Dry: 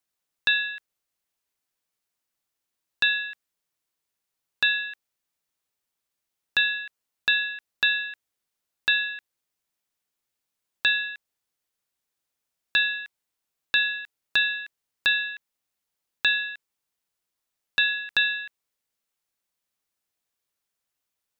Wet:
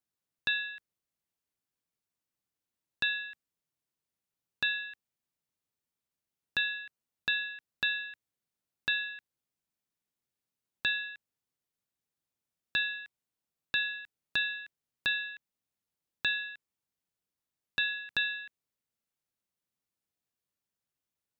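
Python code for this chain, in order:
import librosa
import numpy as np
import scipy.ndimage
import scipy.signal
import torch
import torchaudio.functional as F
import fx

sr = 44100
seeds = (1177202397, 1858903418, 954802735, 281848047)

y = fx.peak_eq(x, sr, hz=140.0, db=10.0, octaves=2.9)
y = y * 10.0 ** (-8.5 / 20.0)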